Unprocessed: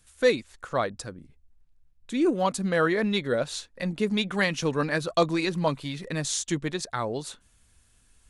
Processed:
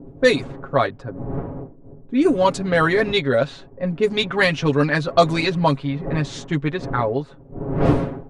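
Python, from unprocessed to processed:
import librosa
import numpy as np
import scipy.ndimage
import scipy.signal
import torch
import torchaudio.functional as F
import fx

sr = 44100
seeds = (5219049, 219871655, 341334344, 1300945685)

y = fx.dmg_wind(x, sr, seeds[0], corner_hz=370.0, level_db=-37.0)
y = fx.env_lowpass(y, sr, base_hz=430.0, full_db=-19.0)
y = y + 0.71 * np.pad(y, (int(7.3 * sr / 1000.0), 0))[:len(y)]
y = F.gain(torch.from_numpy(y), 6.0).numpy()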